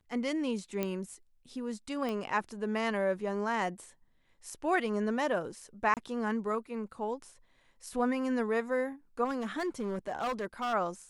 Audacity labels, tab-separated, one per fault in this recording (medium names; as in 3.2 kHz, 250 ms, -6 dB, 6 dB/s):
0.830000	0.830000	pop -18 dBFS
2.090000	2.090000	pop -23 dBFS
5.940000	5.970000	dropout 28 ms
9.240000	10.740000	clipped -29 dBFS